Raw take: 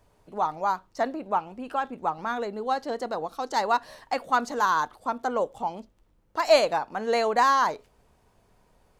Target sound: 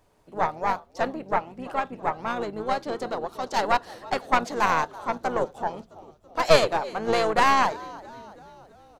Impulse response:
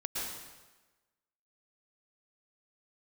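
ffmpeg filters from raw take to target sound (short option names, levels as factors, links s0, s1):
-filter_complex "[0:a]lowshelf=f=150:g=-5,asplit=3[s0][s1][s2];[s1]asetrate=22050,aresample=44100,atempo=2,volume=0.158[s3];[s2]asetrate=33038,aresample=44100,atempo=1.33484,volume=0.398[s4];[s0][s3][s4]amix=inputs=3:normalize=0,asplit=2[s5][s6];[s6]asplit=5[s7][s8][s9][s10][s11];[s7]adelay=331,afreqshift=-75,volume=0.106[s12];[s8]adelay=662,afreqshift=-150,volume=0.0617[s13];[s9]adelay=993,afreqshift=-225,volume=0.0355[s14];[s10]adelay=1324,afreqshift=-300,volume=0.0207[s15];[s11]adelay=1655,afreqshift=-375,volume=0.012[s16];[s12][s13][s14][s15][s16]amix=inputs=5:normalize=0[s17];[s5][s17]amix=inputs=2:normalize=0,aeval=exprs='0.531*(cos(1*acos(clip(val(0)/0.531,-1,1)))-cos(1*PI/2))+0.119*(cos(4*acos(clip(val(0)/0.531,-1,1)))-cos(4*PI/2))':c=same"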